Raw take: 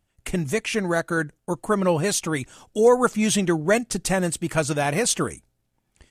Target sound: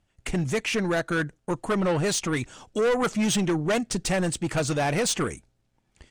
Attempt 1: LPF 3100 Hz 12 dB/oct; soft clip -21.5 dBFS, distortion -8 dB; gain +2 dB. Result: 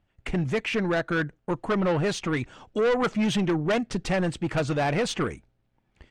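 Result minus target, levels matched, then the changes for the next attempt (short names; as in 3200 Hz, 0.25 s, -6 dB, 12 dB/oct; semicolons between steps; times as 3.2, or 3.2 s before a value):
8000 Hz band -10.0 dB
change: LPF 7500 Hz 12 dB/oct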